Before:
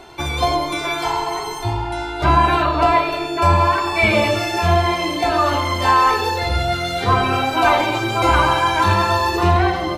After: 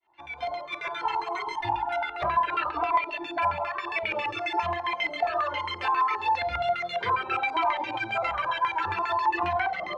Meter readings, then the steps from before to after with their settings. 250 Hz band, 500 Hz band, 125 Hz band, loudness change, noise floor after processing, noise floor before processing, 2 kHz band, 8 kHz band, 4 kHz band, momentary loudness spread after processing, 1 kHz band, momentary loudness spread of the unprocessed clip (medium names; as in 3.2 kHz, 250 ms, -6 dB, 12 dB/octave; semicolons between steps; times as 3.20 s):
-19.0 dB, -12.5 dB, -24.0 dB, -10.5 dB, -40 dBFS, -26 dBFS, -9.0 dB, under -25 dB, -13.0 dB, 6 LU, -9.0 dB, 7 LU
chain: fade-in on the opening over 1.59 s; RIAA curve recording; reverb removal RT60 1.2 s; treble shelf 7.1 kHz -7.5 dB; de-hum 261.7 Hz, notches 29; compression 5:1, threshold -23 dBFS, peak gain reduction 11.5 dB; LFO low-pass square 7.4 Hz 920–2300 Hz; Shepard-style flanger falling 0.65 Hz